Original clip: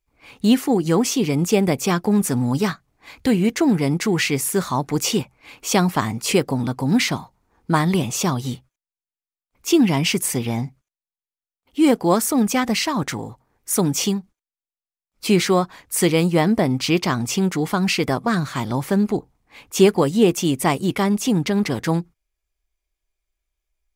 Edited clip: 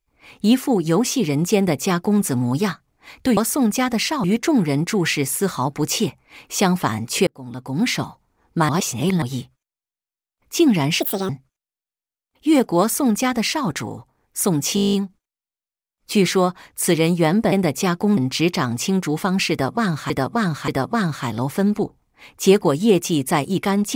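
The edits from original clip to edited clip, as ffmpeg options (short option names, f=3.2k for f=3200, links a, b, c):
-filter_complex "[0:a]asplit=21[a][b][c][d][e][f][g][h][i][j][k][l][m][n][o][p][q][r][s][t][u];[a]atrim=end=3.372[v];[b]atrim=start=12.128:end=13.002[w];[c]atrim=start=3.368:end=6.4,asetpts=PTS-STARTPTS,afade=t=out:st=3.028:d=0.004:c=hsin[x];[d]atrim=start=6.4:end=7.822,asetpts=PTS-STARTPTS,afade=t=in:d=0.74[y];[e]atrim=start=7.818:end=8.352,asetpts=PTS-STARTPTS,areverse[z];[f]atrim=start=8.348:end=10.134[aa];[g]atrim=start=10.13:end=10.61,asetpts=PTS-STARTPTS,asetrate=72765,aresample=44100,atrim=end_sample=12829,asetpts=PTS-STARTPTS[ab];[h]atrim=start=10.606:end=14.092[ac];[i]atrim=start=14.068:end=14.092[ad];[j]atrim=start=14.068:end=14.092[ae];[k]atrim=start=14.068:end=14.092[af];[l]atrim=start=14.068:end=14.092[ag];[m]atrim=start=14.068:end=14.092[ah];[n]atrim=start=14.068:end=14.092[ai];[o]atrim=start=14.068:end=14.092[aj];[p]atrim=start=14.068:end=14.092[ak];[q]atrim=start=14.068:end=16.662[al];[r]atrim=start=1.558:end=2.212[am];[s]atrim=start=16.658:end=18.592[an];[t]atrim=start=18.008:end=18.592[ao];[u]atrim=start=18.008[ap];[v][w]acrossfade=d=0.004:c1=hsin:c2=hsin[aq];[x][y]concat=n=2:v=0:a=1[ar];[aq][ar]acrossfade=d=0.004:c1=hsin:c2=hsin[as];[as][z]acrossfade=d=0.004:c1=hsin:c2=hsin[at];[at][aa]acrossfade=d=0.004:c1=hsin:c2=hsin[au];[au][ab]acrossfade=d=0.004:c1=hsin:c2=hsin[av];[av][ac]acrossfade=d=0.004:c1=hsin:c2=hsin[aw];[aw][ad]acrossfade=d=0.004:c1=hsin:c2=hsin[ax];[ax][ae]acrossfade=d=0.004:c1=hsin:c2=hsin[ay];[ay][af]acrossfade=d=0.004:c1=hsin:c2=hsin[az];[az][ag]acrossfade=d=0.004:c1=hsin:c2=hsin[ba];[ba][ah]acrossfade=d=0.004:c1=hsin:c2=hsin[bb];[bb][ai]acrossfade=d=0.004:c1=hsin:c2=hsin[bc];[bc][aj]acrossfade=d=0.004:c1=hsin:c2=hsin[bd];[bd][ak]acrossfade=d=0.004:c1=hsin:c2=hsin[be];[be][al]acrossfade=d=0.004:c1=hsin:c2=hsin[bf];[bf][am]acrossfade=d=0.004:c1=hsin:c2=hsin[bg];[bg][an]acrossfade=d=0.004:c1=hsin:c2=hsin[bh];[bh][ao]acrossfade=d=0.004:c1=hsin:c2=hsin[bi];[bi][ap]acrossfade=d=0.004:c1=hsin:c2=hsin"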